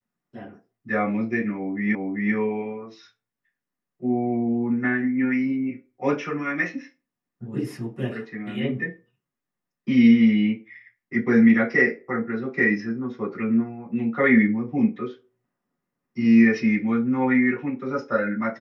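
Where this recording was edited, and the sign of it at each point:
1.95 s: repeat of the last 0.39 s

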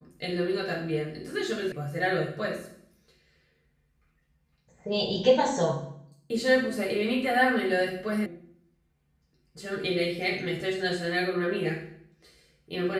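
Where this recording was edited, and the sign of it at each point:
1.72 s: sound stops dead
8.26 s: sound stops dead

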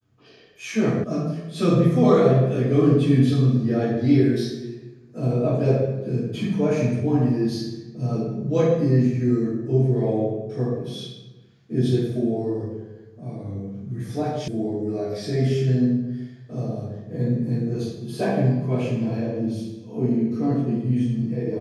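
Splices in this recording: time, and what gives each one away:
1.04 s: sound stops dead
14.48 s: sound stops dead

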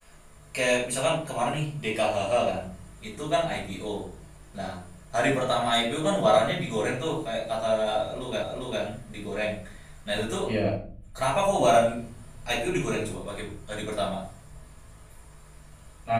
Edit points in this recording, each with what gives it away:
8.43 s: repeat of the last 0.4 s

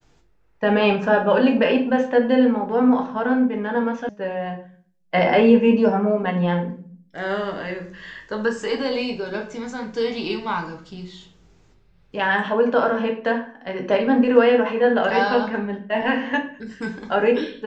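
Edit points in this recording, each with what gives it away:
4.09 s: sound stops dead

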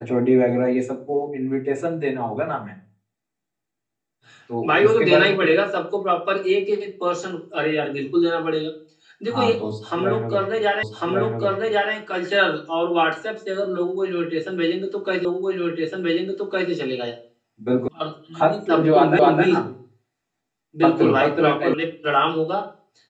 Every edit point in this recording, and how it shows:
10.83 s: repeat of the last 1.1 s
15.25 s: repeat of the last 1.46 s
17.88 s: sound stops dead
19.19 s: repeat of the last 0.26 s
21.74 s: sound stops dead

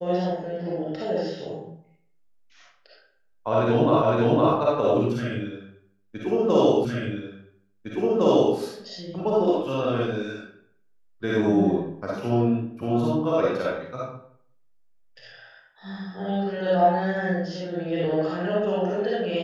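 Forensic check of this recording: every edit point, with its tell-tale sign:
4.02 s: repeat of the last 0.51 s
6.85 s: repeat of the last 1.71 s

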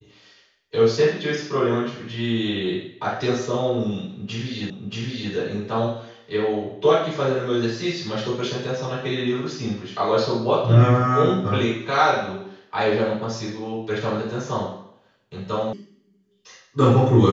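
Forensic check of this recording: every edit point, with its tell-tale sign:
4.70 s: repeat of the last 0.63 s
15.73 s: sound stops dead

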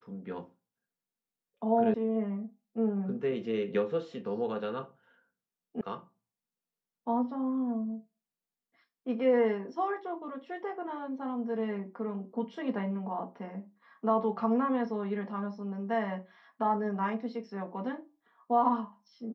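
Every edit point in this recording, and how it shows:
1.94 s: sound stops dead
5.81 s: sound stops dead

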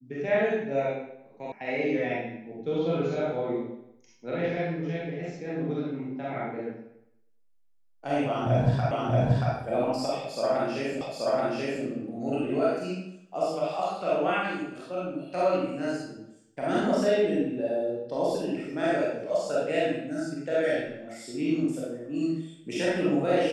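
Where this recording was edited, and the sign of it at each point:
1.52 s: sound stops dead
8.91 s: repeat of the last 0.63 s
11.01 s: repeat of the last 0.83 s

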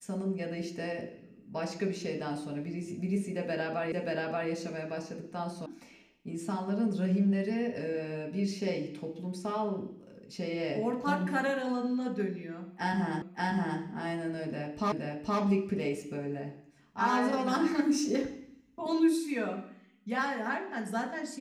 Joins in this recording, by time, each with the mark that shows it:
3.92 s: repeat of the last 0.58 s
5.66 s: sound stops dead
13.22 s: repeat of the last 0.58 s
14.92 s: repeat of the last 0.47 s

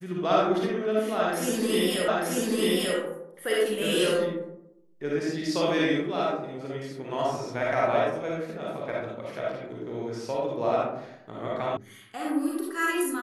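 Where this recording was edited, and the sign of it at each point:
2.08 s: repeat of the last 0.89 s
11.77 s: sound stops dead

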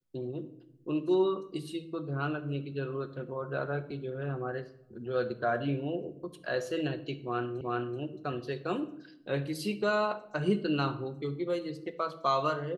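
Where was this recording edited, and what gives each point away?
7.61 s: repeat of the last 0.38 s

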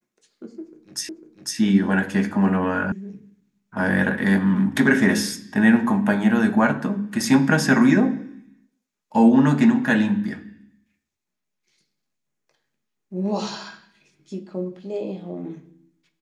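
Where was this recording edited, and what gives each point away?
1.09 s: repeat of the last 0.5 s
2.92 s: sound stops dead

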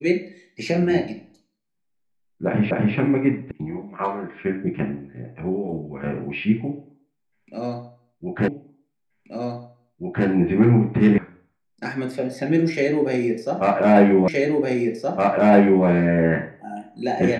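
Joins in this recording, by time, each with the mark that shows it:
2.71 s: repeat of the last 0.25 s
3.51 s: sound stops dead
8.48 s: repeat of the last 1.78 s
11.18 s: sound stops dead
14.28 s: repeat of the last 1.57 s

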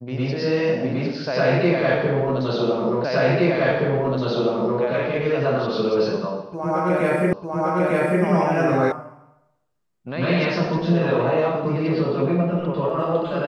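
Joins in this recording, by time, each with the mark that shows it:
3.04 s: repeat of the last 1.77 s
7.33 s: repeat of the last 0.9 s
8.92 s: sound stops dead

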